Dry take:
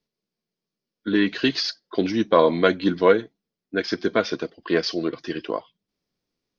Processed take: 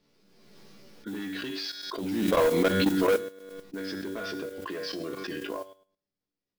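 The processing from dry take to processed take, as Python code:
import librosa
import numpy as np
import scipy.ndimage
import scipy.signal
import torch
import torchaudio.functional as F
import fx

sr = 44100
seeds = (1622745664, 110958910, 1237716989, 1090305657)

p1 = fx.lowpass(x, sr, hz=4000.0, slope=6)
p2 = fx.comb_fb(p1, sr, f0_hz=96.0, decay_s=0.44, harmonics='all', damping=0.0, mix_pct=80)
p3 = p2 + fx.room_early_taps(p2, sr, ms=(14, 63), db=(-8.0, -17.0), dry=0)
p4 = 10.0 ** (-24.0 / 20.0) * np.tanh(p3 / 10.0 ** (-24.0 / 20.0))
p5 = fx.level_steps(p4, sr, step_db=14)
p6 = fx.mod_noise(p5, sr, seeds[0], snr_db=20)
p7 = fx.pre_swell(p6, sr, db_per_s=33.0)
y = p7 * librosa.db_to_amplitude(7.0)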